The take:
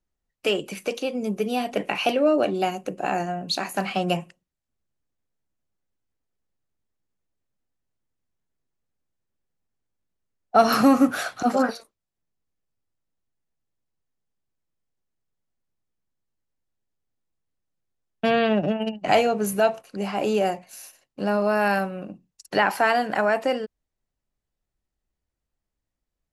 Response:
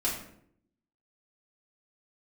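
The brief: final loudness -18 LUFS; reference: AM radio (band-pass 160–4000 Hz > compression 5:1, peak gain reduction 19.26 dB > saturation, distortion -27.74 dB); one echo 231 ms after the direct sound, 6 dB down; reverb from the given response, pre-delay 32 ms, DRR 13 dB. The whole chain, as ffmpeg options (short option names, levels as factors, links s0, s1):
-filter_complex "[0:a]aecho=1:1:231:0.501,asplit=2[s0][s1];[1:a]atrim=start_sample=2205,adelay=32[s2];[s1][s2]afir=irnorm=-1:irlink=0,volume=0.1[s3];[s0][s3]amix=inputs=2:normalize=0,highpass=160,lowpass=4000,acompressor=threshold=0.0224:ratio=5,asoftclip=threshold=0.0891,volume=8.41"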